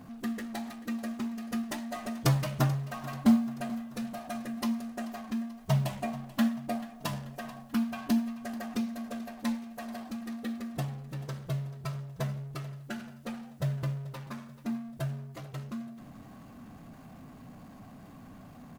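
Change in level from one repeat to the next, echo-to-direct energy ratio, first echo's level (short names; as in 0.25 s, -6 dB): -5.0 dB, -16.0 dB, -17.5 dB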